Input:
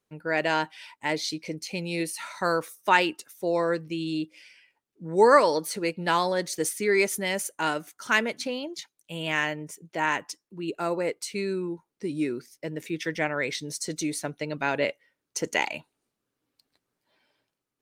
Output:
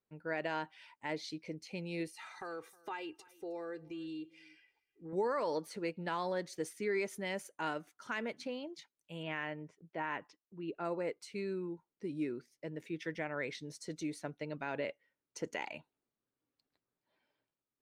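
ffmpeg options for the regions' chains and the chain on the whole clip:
-filter_complex "[0:a]asettb=1/sr,asplit=3[a][b][c];[a]atrim=end=2.074[d];[b]atrim=start=2.07:end=5.13,asetpts=PTS-STARTPTS,afade=t=in:d=0.004:c=qsin,afade=t=out:st=3.056:d=0.004:c=qsin,aecho=1:1:2.5:0.83,atrim=end_sample=134946,acompressor=threshold=-33dB:ratio=3:attack=3.2:release=140:knee=1:detection=peak,aecho=1:1:314:0.0708,atrim=end_sample=134946[e];[c]atrim=start=5.126[f];[d][e]acrossfade=d=0.004:c1=hsin:c2=qsin[g];[g][f]acrossfade=d=0.004:c1=qsin:c2=hsin,asettb=1/sr,asplit=3[h][i][j];[h]atrim=end=9.234[k];[i]atrim=start=9.23:end=10.85,asetpts=PTS-STARTPTS,afade=t=in:d=0.004:c=qsin,afade=t=out:st=1.616:d=0.004:c=qsin,lowpass=3.4k,agate=range=-8dB:threshold=-56dB:ratio=16:release=100:detection=peak[l];[j]atrim=start=10.846[m];[k][l]acrossfade=d=0.004:c1=hsin:c2=qsin[n];[n][m]acrossfade=d=0.004:c1=qsin:c2=hsin,lowpass=f=2.5k:p=1,alimiter=limit=-16.5dB:level=0:latency=1:release=82,volume=-9dB"

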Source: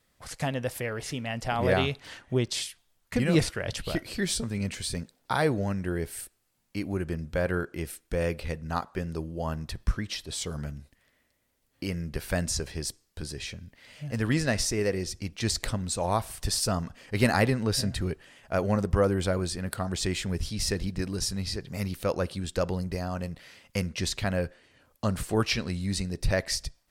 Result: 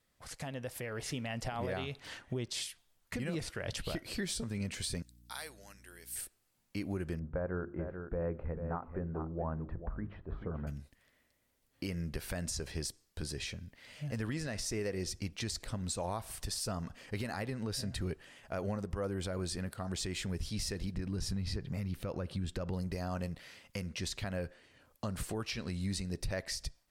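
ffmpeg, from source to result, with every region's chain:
-filter_complex "[0:a]asettb=1/sr,asplit=3[a][b][c];[a]atrim=end=5.024[d];[b]atrim=start=5.02:end=6.16,asetpts=PTS-STARTPTS,afade=t=in:d=0.004:c=qsin,afade=t=out:st=1.136:d=0.004:c=qsin,aderivative,aeval=exprs='val(0)+0.00141*(sin(2*PI*60*n/s)+sin(2*PI*2*60*n/s)/2+sin(2*PI*3*60*n/s)/3+sin(2*PI*4*60*n/s)/4+sin(2*PI*5*60*n/s)/5)':c=same[e];[c]atrim=start=6.156[f];[d][e]acrossfade=d=0.004:c1=hsin:c2=qsin[g];[g][f]acrossfade=d=0.004:c1=qsin:c2=hsin,asettb=1/sr,asplit=3[h][i][j];[h]atrim=end=7.194[k];[i]atrim=start=7.19:end=10.67,asetpts=PTS-STARTPTS,afade=t=in:d=0.004:c=qsin,afade=t=out:st=3.476:d=0.004:c=qsin,lowpass=f=1.4k:w=0.5412,lowpass=f=1.4k:w=1.3066,bandreject=f=50:t=h:w=6,bandreject=f=100:t=h:w=6,bandreject=f=150:t=h:w=6,bandreject=f=200:t=h:w=6,bandreject=f=250:t=h:w=6,bandreject=f=300:t=h:w=6,bandreject=f=350:t=h:w=6,bandreject=f=400:t=h:w=6,aecho=1:1:438:0.266,atrim=end_sample=153468[l];[j]atrim=start=10.666[m];[k][l]acrossfade=d=0.004:c1=hsin:c2=qsin[n];[n][m]acrossfade=d=0.004:c1=qsin:c2=hsin,asettb=1/sr,asplit=3[o][p][q];[o]atrim=end=20.944[r];[p]atrim=start=20.94:end=22.73,asetpts=PTS-STARTPTS,afade=t=in:d=0.004:c=qsin,afade=t=out:st=1.786:d=0.004:c=qsin,bass=f=250:g=6,treble=f=4k:g=-7,acompressor=threshold=-28dB:ratio=2:attack=3.2:release=140:knee=1:detection=peak[s];[q]atrim=start=22.726[t];[r][s]acrossfade=d=0.004:c1=hsin:c2=qsin[u];[u][t]acrossfade=d=0.004:c1=qsin:c2=hsin,acompressor=threshold=-30dB:ratio=2.5,alimiter=level_in=0.5dB:limit=-24dB:level=0:latency=1:release=131,volume=-0.5dB,dynaudnorm=f=610:g=3:m=4dB,volume=-6.5dB"

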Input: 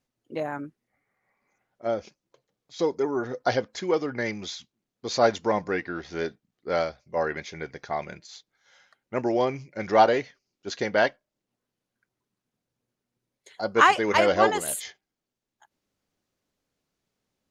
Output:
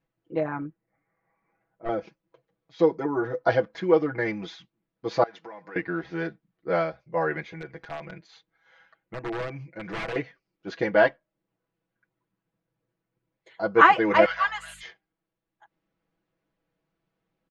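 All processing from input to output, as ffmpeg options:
-filter_complex "[0:a]asettb=1/sr,asplit=3[a][b][c];[a]atrim=end=0.614[d];[b]atrim=start=0.61:end=1.89,asetpts=PTS-STARTPTS,afade=t=in:d=0.004:c=qsin,afade=t=out:st=1.276:d=0.004:c=qsin,lowpass=f=1.6k:p=1,aeval=exprs='clip(val(0),-1,0.0266)':c=same[e];[c]atrim=start=1.886[f];[d][e]acrossfade=d=0.004:c1=hsin:c2=qsin[g];[g][f]acrossfade=d=0.004:c1=qsin:c2=hsin,asettb=1/sr,asplit=3[h][i][j];[h]atrim=end=5.234[k];[i]atrim=start=5.23:end=5.76,asetpts=PTS-STARTPTS,afade=t=in:d=0.004:c=qsin,afade=t=out:st=0.526:d=0.004:c=qsin,equalizer=f=13k:t=o:w=0.95:g=-8.5,acompressor=threshold=-33dB:ratio=10:attack=3.2:release=140:knee=1:detection=peak,highpass=f=1k:p=1[l];[j]atrim=start=5.756[m];[k][l]acrossfade=d=0.004:c1=hsin:c2=qsin[n];[n][m]acrossfade=d=0.004:c1=qsin:c2=hsin,asettb=1/sr,asplit=3[o][p][q];[o]atrim=end=7.434[r];[p]atrim=start=7.43:end=10.16,asetpts=PTS-STARTPTS,afade=t=in:d=0.004:c=qsin,afade=t=out:st=2.726:d=0.004:c=qsin,bandreject=f=5.3k:w=11,acompressor=threshold=-39dB:ratio=2:attack=3.2:release=140:knee=1:detection=peak,aeval=exprs='(mod(23.7*val(0)+1,2)-1)/23.7':c=same[s];[q]atrim=start=10.156[t];[r][s]acrossfade=d=0.004:c1=hsin:c2=qsin[u];[u][t]acrossfade=d=0.004:c1=qsin:c2=hsin,asettb=1/sr,asplit=3[v][w][x];[v]atrim=end=14.254[y];[w]atrim=start=14.25:end=14.83,asetpts=PTS-STARTPTS,afade=t=in:d=0.004:c=qsin,afade=t=out:st=0.576:d=0.004:c=qsin,highpass=f=1.2k:w=0.5412,highpass=f=1.2k:w=1.3066,highshelf=f=6.2k:g=5.5,aeval=exprs='val(0)+0.00141*(sin(2*PI*50*n/s)+sin(2*PI*2*50*n/s)/2+sin(2*PI*3*50*n/s)/3+sin(2*PI*4*50*n/s)/4+sin(2*PI*5*50*n/s)/5)':c=same[z];[x]atrim=start=14.826[aa];[y][z]acrossfade=d=0.004:c1=hsin:c2=qsin[ab];[ab][aa]acrossfade=d=0.004:c1=qsin:c2=hsin,lowpass=2.3k,aecho=1:1:6.1:0.92"

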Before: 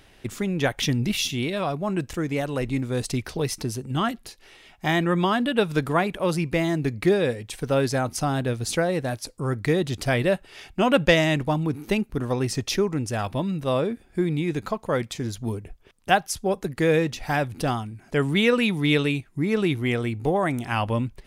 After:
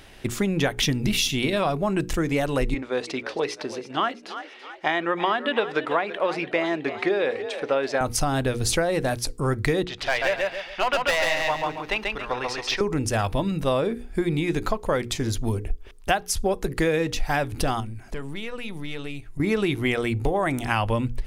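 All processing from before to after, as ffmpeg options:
-filter_complex "[0:a]asettb=1/sr,asplit=3[a][b][c];[a]atrim=end=2.744[d];[b]atrim=start=2.74:end=8.01,asetpts=PTS-STARTPTS,afade=t=in:d=0.004:c=qsin,afade=t=out:st=5.266:d=0.004:c=qsin,highpass=390,lowpass=3.3k,asplit=5[e][f][g][h][i];[f]adelay=331,afreqshift=54,volume=-14.5dB[j];[g]adelay=662,afreqshift=108,volume=-20.9dB[k];[h]adelay=993,afreqshift=162,volume=-27.3dB[l];[i]adelay=1324,afreqshift=216,volume=-33.6dB[m];[e][j][k][l][m]amix=inputs=5:normalize=0,atrim=end_sample=232407[n];[c]atrim=start=8.006[o];[d][n]acrossfade=d=0.004:c1=hsin:c2=qsin[p];[p][o]acrossfade=d=0.004:c1=qsin:c2=hsin,asettb=1/sr,asplit=3[q][r][s];[q]atrim=end=9.844[t];[r]atrim=start=9.84:end=12.81,asetpts=PTS-STARTPTS,afade=t=in:d=0.004:c=qsin,afade=t=out:st=2.966:d=0.004:c=qsin,acrossover=split=600 4700:gain=0.1 1 0.0708[u][v][w];[u][v][w]amix=inputs=3:normalize=0,asoftclip=type=hard:threshold=-20.5dB,aecho=1:1:138|276|414|552:0.708|0.241|0.0818|0.0278,atrim=end_sample=130977[x];[s]atrim=start=12.806[y];[t][x]acrossfade=d=0.004:c1=hsin:c2=qsin[z];[z][y]acrossfade=d=0.004:c1=qsin:c2=hsin,asettb=1/sr,asplit=3[aa][ab][ac];[aa]atrim=end=17.804[ad];[ab]atrim=start=17.8:end=19.4,asetpts=PTS-STARTPTS,afade=t=in:d=0.004:c=qsin,afade=t=out:st=1.596:d=0.004:c=qsin,acompressor=threshold=-35dB:ratio=5:attack=3.2:release=140:knee=1:detection=peak,aeval=exprs='(tanh(22.4*val(0)+0.4)-tanh(0.4))/22.4':c=same[ae];[ac]atrim=start=19.396[af];[ad][ae]acrossfade=d=0.004:c1=hsin:c2=qsin[ag];[ag][af]acrossfade=d=0.004:c1=qsin:c2=hsin,bandreject=f=60:t=h:w=6,bandreject=f=120:t=h:w=6,bandreject=f=180:t=h:w=6,bandreject=f=240:t=h:w=6,bandreject=f=300:t=h:w=6,bandreject=f=360:t=h:w=6,bandreject=f=420:t=h:w=6,bandreject=f=480:t=h:w=6,asubboost=boost=7:cutoff=53,acompressor=threshold=-25dB:ratio=6,volume=6dB"

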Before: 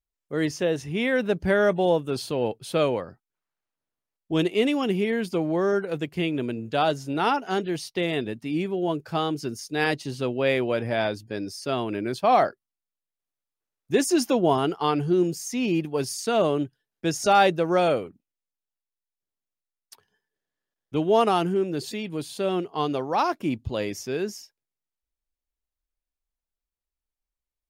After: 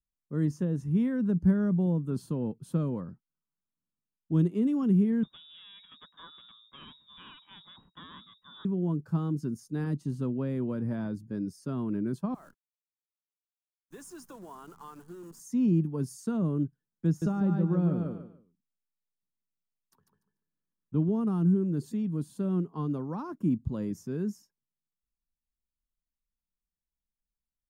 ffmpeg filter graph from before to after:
-filter_complex "[0:a]asettb=1/sr,asplit=3[a][b][c];[a]atrim=end=5.234[d];[b]atrim=start=5.23:end=8.65,asetpts=PTS-STARTPTS,afade=t=in:d=0.004:c=qsin,afade=t=out:st=3.416:d=0.004:c=qsin,aeval=exprs='(tanh(11.2*val(0)+0.55)-tanh(0.55))/11.2':c=same,lowpass=f=3.2k:t=q:w=0.5098,lowpass=f=3.2k:t=q:w=0.6013,lowpass=f=3.2k:t=q:w=0.9,lowpass=f=3.2k:t=q:w=2.563,afreqshift=-3800[e];[c]atrim=start=8.646[f];[d][e]acrossfade=d=0.004:c1=hsin:c2=qsin[g];[g][f]acrossfade=d=0.004:c1=qsin:c2=hsin,asettb=1/sr,asplit=3[h][i][j];[h]atrim=end=12.344[k];[i]atrim=start=12.34:end=15.4,asetpts=PTS-STARTPTS,afade=t=in:d=0.004:c=qsin,afade=t=out:st=3.056:d=0.004:c=qsin,highpass=800,acompressor=threshold=-35dB:ratio=2.5:attack=3.2:release=140:knee=1:detection=peak,acrusher=bits=8:dc=4:mix=0:aa=0.000001[l];[j]atrim=start=15.396[m];[k][l]acrossfade=d=0.004:c1=hsin:c2=qsin[n];[n][m]acrossfade=d=0.004:c1=qsin:c2=hsin,asettb=1/sr,asplit=3[o][p][q];[o]atrim=end=17.074[r];[p]atrim=start=17.07:end=21.09,asetpts=PTS-STARTPTS,afade=t=in:d=0.004:c=qsin,afade=t=out:st=4.016:d=0.004:c=qsin,equalizer=f=8.5k:t=o:w=1.4:g=-9,aecho=1:1:146|292|438:0.562|0.129|0.0297,atrim=end_sample=177282[s];[q]atrim=start=21.086[t];[r][s]acrossfade=d=0.004:c1=hsin:c2=qsin[u];[u][t]acrossfade=d=0.004:c1=qsin:c2=hsin,highshelf=f=10k:g=-7.5,acrossover=split=350[v][w];[w]acompressor=threshold=-26dB:ratio=10[x];[v][x]amix=inputs=2:normalize=0,firequalizer=gain_entry='entry(110,0);entry(170,9);entry(370,-6);entry(720,-16);entry(1000,-6);entry(1500,-10);entry(2200,-22);entry(4800,-18);entry(7300,-8);entry(15000,-5)':delay=0.05:min_phase=1,volume=-2dB"

